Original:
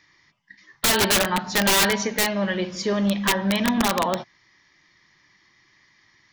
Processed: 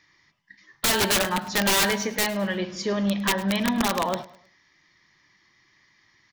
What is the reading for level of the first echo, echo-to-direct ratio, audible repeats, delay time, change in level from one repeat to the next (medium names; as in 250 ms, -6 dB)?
-18.5 dB, -18.0 dB, 2, 105 ms, -8.5 dB